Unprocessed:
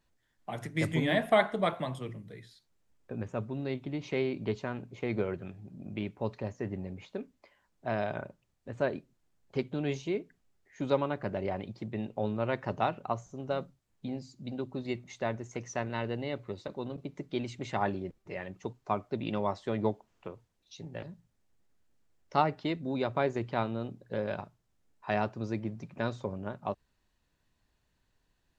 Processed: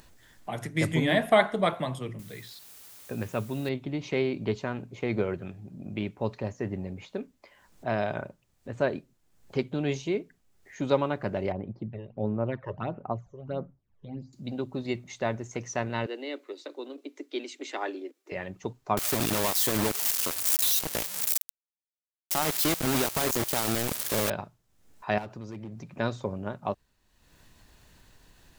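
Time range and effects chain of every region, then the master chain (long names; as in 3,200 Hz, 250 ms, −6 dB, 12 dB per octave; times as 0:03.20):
0:02.19–0:03.69: high-pass filter 50 Hz + parametric band 3,300 Hz +7 dB 2 octaves + bit-depth reduction 10 bits, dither triangular
0:11.52–0:14.33: all-pass phaser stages 12, 1.5 Hz, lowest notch 230–4,800 Hz + head-to-tape spacing loss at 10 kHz 34 dB
0:16.06–0:18.32: Butterworth high-pass 270 Hz 72 dB per octave + parametric band 810 Hz −7.5 dB 1.6 octaves
0:18.97–0:24.30: spike at every zero crossing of −23.5 dBFS + downward compressor 10 to 1, threshold −34 dBFS + log-companded quantiser 2 bits
0:25.18–0:25.91: gain into a clipping stage and back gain 28.5 dB + downward compressor 5 to 1, threshold −40 dBFS
whole clip: high-shelf EQ 6,500 Hz +5.5 dB; upward compression, threshold −46 dBFS; level +3.5 dB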